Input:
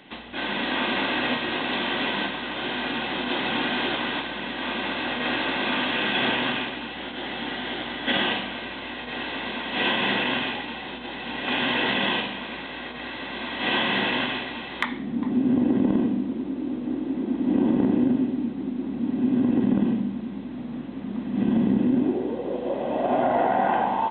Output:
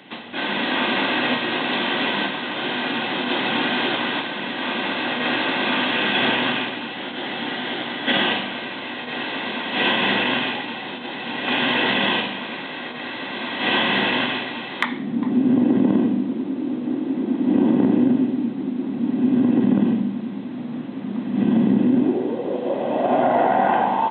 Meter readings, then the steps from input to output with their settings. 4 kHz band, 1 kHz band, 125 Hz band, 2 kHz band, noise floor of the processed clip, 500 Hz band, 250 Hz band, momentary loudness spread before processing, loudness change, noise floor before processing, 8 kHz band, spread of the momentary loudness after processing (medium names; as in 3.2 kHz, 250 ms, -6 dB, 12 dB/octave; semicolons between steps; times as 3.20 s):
+4.0 dB, +4.0 dB, +3.5 dB, +4.0 dB, -32 dBFS, +4.0 dB, +4.0 dB, 11 LU, +4.0 dB, -36 dBFS, no reading, 11 LU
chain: high-pass 110 Hz 24 dB/octave; trim +4 dB